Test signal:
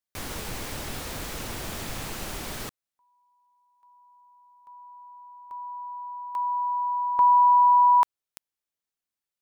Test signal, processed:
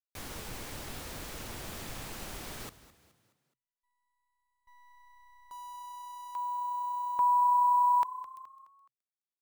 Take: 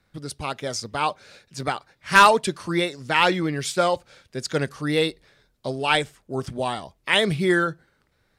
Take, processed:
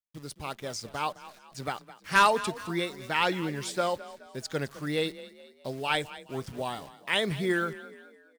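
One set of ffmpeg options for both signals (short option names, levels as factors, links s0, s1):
-filter_complex "[0:a]acrusher=bits=8:dc=4:mix=0:aa=0.000001,agate=range=0.0224:threshold=0.00158:ratio=3:release=24:detection=peak,asplit=5[s0][s1][s2][s3][s4];[s1]adelay=211,afreqshift=31,volume=0.15[s5];[s2]adelay=422,afreqshift=62,volume=0.0661[s6];[s3]adelay=633,afreqshift=93,volume=0.0288[s7];[s4]adelay=844,afreqshift=124,volume=0.0127[s8];[s0][s5][s6][s7][s8]amix=inputs=5:normalize=0,volume=0.422"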